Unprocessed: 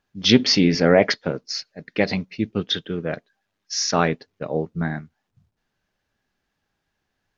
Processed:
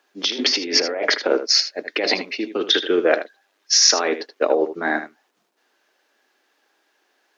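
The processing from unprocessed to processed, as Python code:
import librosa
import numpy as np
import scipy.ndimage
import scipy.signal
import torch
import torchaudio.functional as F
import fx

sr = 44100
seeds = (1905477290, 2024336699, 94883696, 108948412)

p1 = fx.over_compress(x, sr, threshold_db=-25.0, ratio=-1.0)
p2 = scipy.signal.sosfilt(scipy.signal.butter(6, 300.0, 'highpass', fs=sr, output='sos'), p1)
p3 = p2 + fx.echo_single(p2, sr, ms=78, db=-11.5, dry=0)
y = p3 * librosa.db_to_amplitude(7.5)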